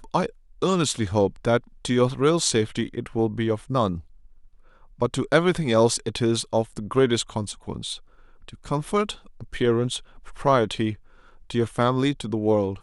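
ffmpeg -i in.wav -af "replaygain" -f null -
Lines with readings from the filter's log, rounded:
track_gain = +3.6 dB
track_peak = 0.441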